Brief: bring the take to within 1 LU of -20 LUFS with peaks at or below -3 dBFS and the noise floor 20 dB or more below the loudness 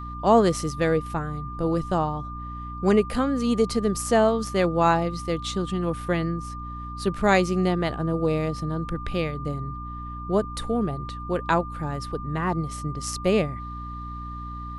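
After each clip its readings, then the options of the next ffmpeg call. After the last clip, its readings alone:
hum 60 Hz; highest harmonic 300 Hz; hum level -34 dBFS; steady tone 1.2 kHz; tone level -36 dBFS; loudness -25.0 LUFS; peak level -7.0 dBFS; loudness target -20.0 LUFS
-> -af "bandreject=f=60:t=h:w=4,bandreject=f=120:t=h:w=4,bandreject=f=180:t=h:w=4,bandreject=f=240:t=h:w=4,bandreject=f=300:t=h:w=4"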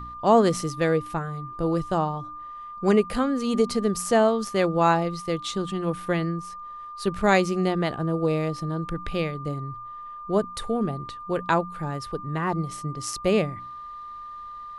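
hum not found; steady tone 1.2 kHz; tone level -36 dBFS
-> -af "bandreject=f=1200:w=30"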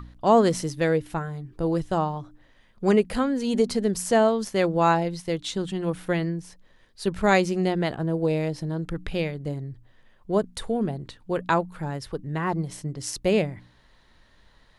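steady tone not found; loudness -25.5 LUFS; peak level -7.5 dBFS; loudness target -20.0 LUFS
-> -af "volume=1.88,alimiter=limit=0.708:level=0:latency=1"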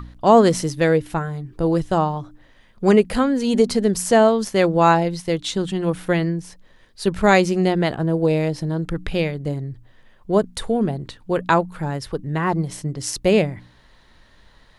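loudness -20.0 LUFS; peak level -3.0 dBFS; noise floor -53 dBFS

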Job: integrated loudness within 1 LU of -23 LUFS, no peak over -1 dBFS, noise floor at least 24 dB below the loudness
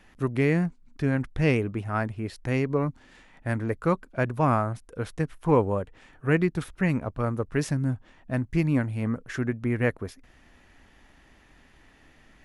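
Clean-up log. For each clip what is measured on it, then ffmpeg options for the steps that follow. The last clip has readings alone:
loudness -27.5 LUFS; peak level -9.0 dBFS; loudness target -23.0 LUFS
-> -af "volume=1.68"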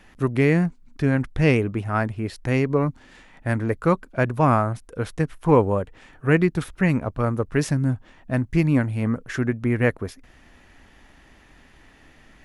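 loudness -23.0 LUFS; peak level -4.5 dBFS; noise floor -53 dBFS

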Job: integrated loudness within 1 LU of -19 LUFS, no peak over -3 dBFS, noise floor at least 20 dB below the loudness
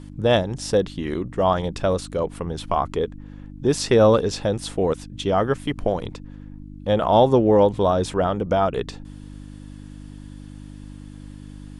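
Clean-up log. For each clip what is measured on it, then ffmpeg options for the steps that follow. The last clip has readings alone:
hum 50 Hz; highest harmonic 300 Hz; hum level -37 dBFS; loudness -21.5 LUFS; peak level -3.5 dBFS; loudness target -19.0 LUFS
-> -af "bandreject=f=50:t=h:w=4,bandreject=f=100:t=h:w=4,bandreject=f=150:t=h:w=4,bandreject=f=200:t=h:w=4,bandreject=f=250:t=h:w=4,bandreject=f=300:t=h:w=4"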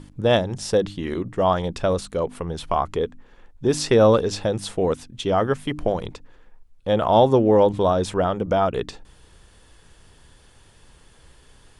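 hum not found; loudness -21.5 LUFS; peak level -3.0 dBFS; loudness target -19.0 LUFS
-> -af "volume=1.33,alimiter=limit=0.708:level=0:latency=1"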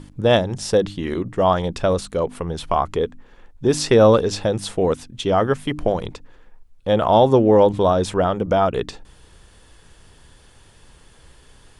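loudness -19.0 LUFS; peak level -3.0 dBFS; noise floor -51 dBFS

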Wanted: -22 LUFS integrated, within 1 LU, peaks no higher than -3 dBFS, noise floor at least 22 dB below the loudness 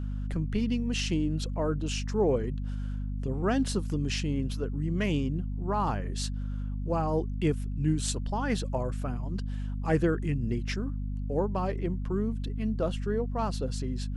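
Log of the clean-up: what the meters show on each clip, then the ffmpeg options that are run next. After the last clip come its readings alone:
hum 50 Hz; highest harmonic 250 Hz; hum level -30 dBFS; loudness -30.5 LUFS; peak level -13.0 dBFS; loudness target -22.0 LUFS
-> -af "bandreject=f=50:t=h:w=6,bandreject=f=100:t=h:w=6,bandreject=f=150:t=h:w=6,bandreject=f=200:t=h:w=6,bandreject=f=250:t=h:w=6"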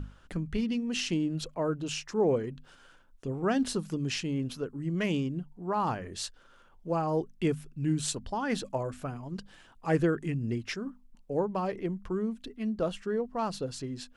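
hum not found; loudness -32.0 LUFS; peak level -14.5 dBFS; loudness target -22.0 LUFS
-> -af "volume=3.16"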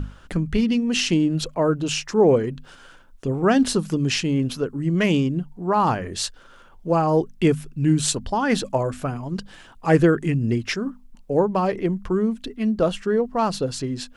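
loudness -22.0 LUFS; peak level -4.5 dBFS; noise floor -48 dBFS

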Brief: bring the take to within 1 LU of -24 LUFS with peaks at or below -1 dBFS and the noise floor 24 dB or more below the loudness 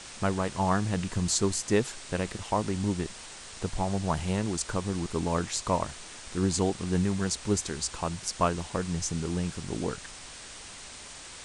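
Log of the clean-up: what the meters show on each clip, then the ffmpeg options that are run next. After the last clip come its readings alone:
noise floor -45 dBFS; noise floor target -54 dBFS; loudness -30.0 LUFS; peak level -10.5 dBFS; loudness target -24.0 LUFS
-> -af "afftdn=nr=9:nf=-45"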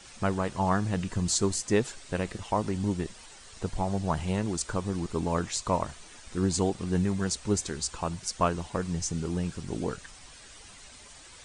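noise floor -50 dBFS; noise floor target -54 dBFS
-> -af "afftdn=nr=6:nf=-50"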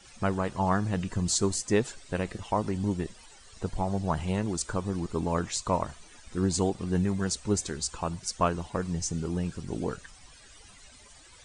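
noise floor -53 dBFS; noise floor target -54 dBFS
-> -af "afftdn=nr=6:nf=-53"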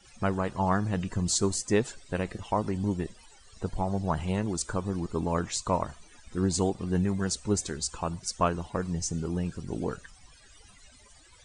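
noise floor -56 dBFS; loudness -30.0 LUFS; peak level -10.5 dBFS; loudness target -24.0 LUFS
-> -af "volume=2"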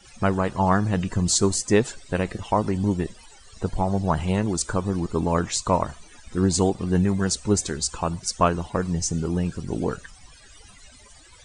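loudness -24.0 LUFS; peak level -4.5 dBFS; noise floor -50 dBFS

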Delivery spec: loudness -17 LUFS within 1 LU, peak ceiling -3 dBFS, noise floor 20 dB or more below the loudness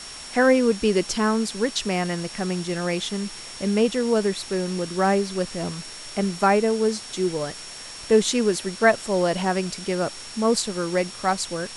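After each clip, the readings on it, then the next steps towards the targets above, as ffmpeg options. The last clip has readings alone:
steady tone 5.5 kHz; tone level -40 dBFS; noise floor -39 dBFS; noise floor target -44 dBFS; loudness -23.5 LUFS; peak level -5.0 dBFS; loudness target -17.0 LUFS
-> -af "bandreject=f=5500:w=30"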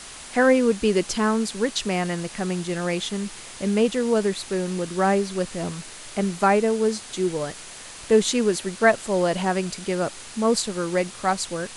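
steady tone not found; noise floor -41 dBFS; noise floor target -44 dBFS
-> -af "afftdn=nr=6:nf=-41"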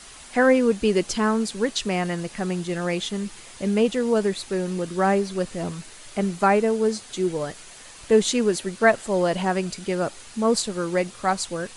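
noise floor -44 dBFS; loudness -23.5 LUFS; peak level -5.0 dBFS; loudness target -17.0 LUFS
-> -af "volume=2.11,alimiter=limit=0.708:level=0:latency=1"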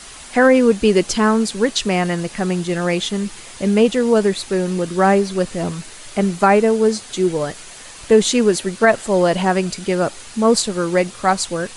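loudness -17.5 LUFS; peak level -3.0 dBFS; noise floor -38 dBFS

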